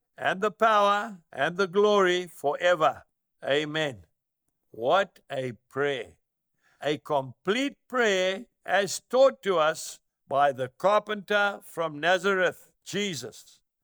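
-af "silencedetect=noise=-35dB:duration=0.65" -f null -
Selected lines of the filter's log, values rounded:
silence_start: 3.93
silence_end: 4.74 | silence_duration: 0.81
silence_start: 6.04
silence_end: 6.83 | silence_duration: 0.79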